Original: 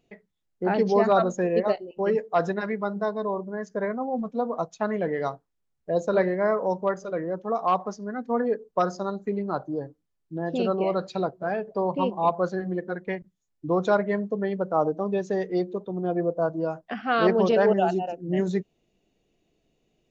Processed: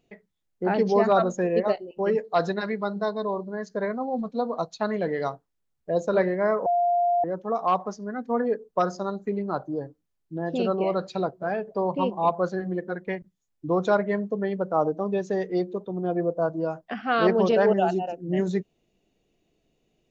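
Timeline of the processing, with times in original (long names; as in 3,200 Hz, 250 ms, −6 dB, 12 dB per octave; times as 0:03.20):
0:02.24–0:05.24: parametric band 4,200 Hz +15 dB 0.3 octaves
0:06.66–0:07.24: beep over 700 Hz −19 dBFS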